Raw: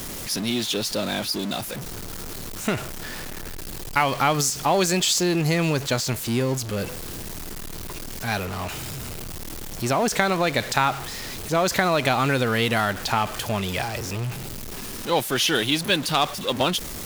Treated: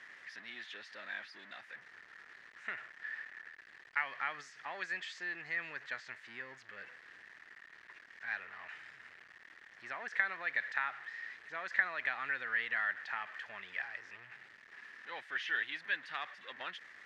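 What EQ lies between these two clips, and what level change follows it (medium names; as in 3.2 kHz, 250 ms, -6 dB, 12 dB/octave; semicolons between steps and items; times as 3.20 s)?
band-pass filter 1.8 kHz, Q 8.5; distance through air 80 m; 0.0 dB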